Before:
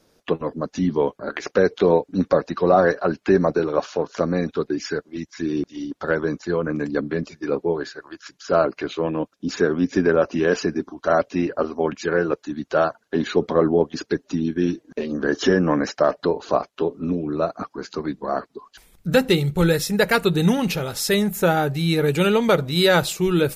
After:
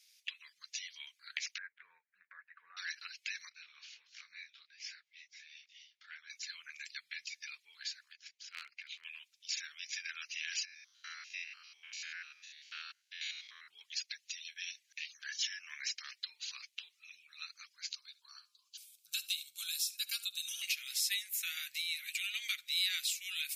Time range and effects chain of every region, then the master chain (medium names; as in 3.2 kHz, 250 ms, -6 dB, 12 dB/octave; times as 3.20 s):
1.58–2.77 s: Chebyshev band-pass 140–1700 Hz, order 4 + peaking EQ 390 Hz -3.5 dB 0.21 oct
3.49–6.30 s: tape spacing loss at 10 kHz 21 dB + detune thickener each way 47 cents
8.12–9.05 s: tilt EQ -4 dB/octave + transient shaper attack -11 dB, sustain -4 dB
10.65–13.68 s: spectrogram pixelated in time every 100 ms + treble shelf 5.6 kHz -4 dB
17.95–20.62 s: static phaser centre 390 Hz, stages 8 + de-hum 173.8 Hz, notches 8 + delay 71 ms -20 dB
21.74–22.34 s: band-stop 1.7 kHz, Q 19 + compression 4:1, threshold -20 dBFS
whole clip: elliptic high-pass 2.2 kHz, stop band 70 dB; compression 2:1, threshold -40 dBFS; trim +1.5 dB